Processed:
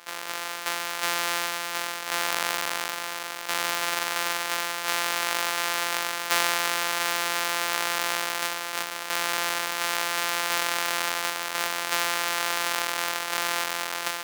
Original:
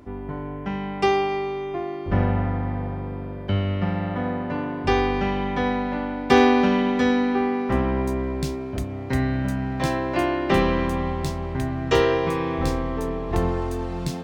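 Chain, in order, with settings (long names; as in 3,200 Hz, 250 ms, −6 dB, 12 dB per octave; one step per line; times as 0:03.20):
samples sorted by size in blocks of 256 samples
high-pass filter 1,100 Hz 12 dB per octave
in parallel at +2.5 dB: compressor whose output falls as the input rises −34 dBFS, ratio −1
on the sum: level −2 dB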